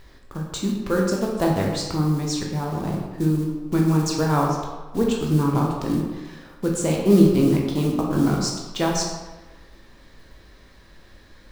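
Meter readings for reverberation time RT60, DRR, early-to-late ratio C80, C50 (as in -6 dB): 1.2 s, -1.5 dB, 4.5 dB, 2.5 dB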